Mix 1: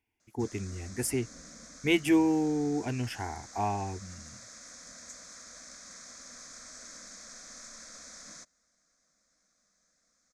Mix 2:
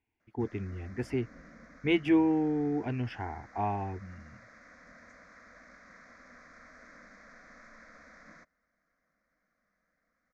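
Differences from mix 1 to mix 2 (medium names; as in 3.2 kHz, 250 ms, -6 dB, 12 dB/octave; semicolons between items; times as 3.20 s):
background: add resonant high shelf 2.5 kHz -6 dB, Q 3; master: add distance through air 260 m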